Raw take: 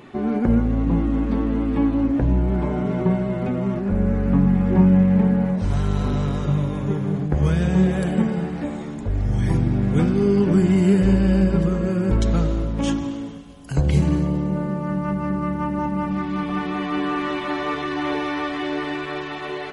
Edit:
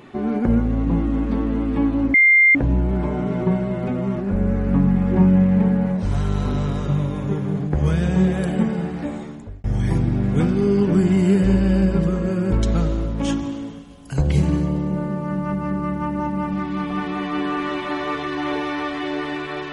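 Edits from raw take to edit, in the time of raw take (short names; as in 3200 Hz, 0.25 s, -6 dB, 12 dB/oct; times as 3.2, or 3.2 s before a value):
2.14 add tone 2100 Hz -9.5 dBFS 0.41 s
8.75–9.23 fade out linear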